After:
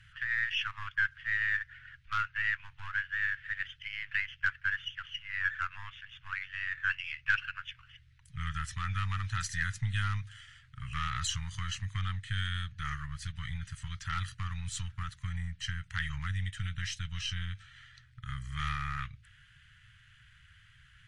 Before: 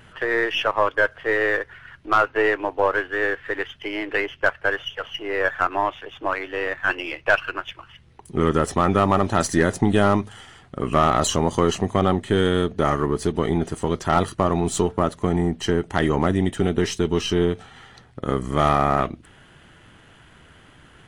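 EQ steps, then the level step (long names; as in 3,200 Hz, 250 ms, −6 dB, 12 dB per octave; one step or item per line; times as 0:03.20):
elliptic band-stop filter 120–1,600 Hz, stop band 60 dB
high-frequency loss of the air 57 metres
−6.0 dB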